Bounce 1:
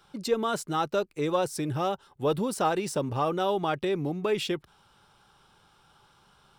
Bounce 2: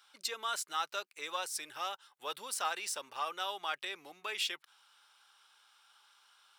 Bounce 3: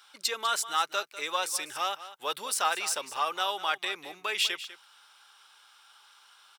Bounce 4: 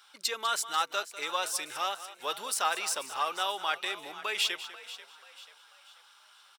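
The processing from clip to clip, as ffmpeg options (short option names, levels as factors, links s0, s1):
-af "highpass=1500"
-af "aecho=1:1:198:0.188,volume=2.37"
-filter_complex "[0:a]asplit=5[s0][s1][s2][s3][s4];[s1]adelay=488,afreqshift=49,volume=0.168[s5];[s2]adelay=976,afreqshift=98,volume=0.0741[s6];[s3]adelay=1464,afreqshift=147,volume=0.0324[s7];[s4]adelay=1952,afreqshift=196,volume=0.0143[s8];[s0][s5][s6][s7][s8]amix=inputs=5:normalize=0,volume=0.841"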